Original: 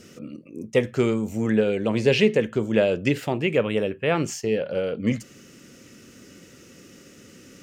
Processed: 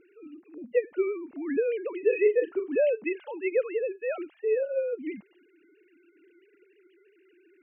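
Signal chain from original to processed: formants replaced by sine waves; 2.00–2.76 s: doubling 38 ms -8 dB; trim -5.5 dB

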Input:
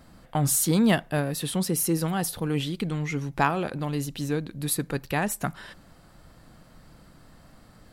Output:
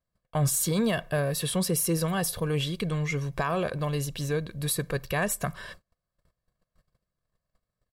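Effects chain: gate -46 dBFS, range -35 dB; comb 1.8 ms, depth 62%; peak limiter -17.5 dBFS, peak gain reduction 9.5 dB

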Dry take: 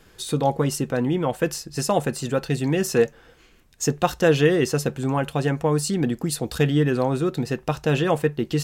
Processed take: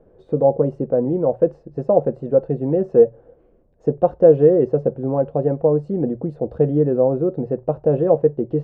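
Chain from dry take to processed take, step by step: resonant low-pass 560 Hz, resonance Q 3.5; hum notches 60/120 Hz; trim -1 dB

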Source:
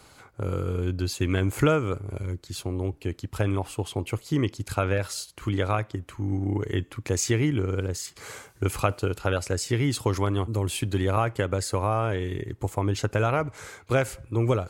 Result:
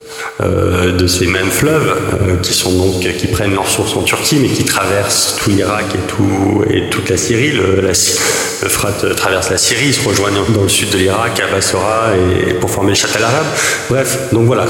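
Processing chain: whistle 450 Hz -48 dBFS; high-pass 210 Hz 6 dB/octave; tilt shelf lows -4 dB, about 670 Hz; compression 6:1, threshold -32 dBFS, peak gain reduction 14.5 dB; harmonic tremolo 1.8 Hz, depth 70%, crossover 540 Hz; expander -48 dBFS; rotary cabinet horn 6 Hz, later 0.6 Hz, at 4.67 s; plate-style reverb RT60 2.8 s, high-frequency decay 0.9×, DRR 7 dB; loudness maximiser +34.5 dB; trim -1 dB

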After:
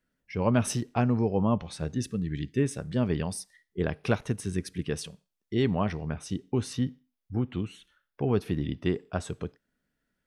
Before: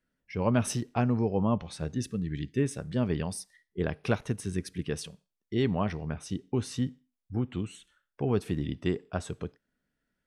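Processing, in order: 6.73–8.95 s: peaking EQ 7.8 kHz -11.5 dB 0.44 oct; trim +1.5 dB

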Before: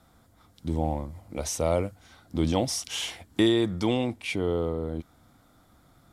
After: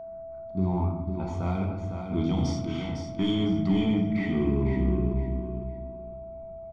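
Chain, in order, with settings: gliding tape speed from 120% -> 62%; simulated room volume 380 m³, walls mixed, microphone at 1.1 m; level-controlled noise filter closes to 1.2 kHz, open at -11 dBFS; fifteen-band graphic EQ 1 kHz -5 dB, 2.5 kHz -5 dB, 10 kHz -11 dB; in parallel at -7 dB: hard clipper -19.5 dBFS, distortion -13 dB; on the sum: peak limiter -14.5 dBFS, peak gain reduction 6.5 dB; comb 0.9 ms, depth 88%; whistle 660 Hz -31 dBFS; on a send: feedback delay 505 ms, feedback 24%, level -7 dB; on the sum: trim -6.5 dB

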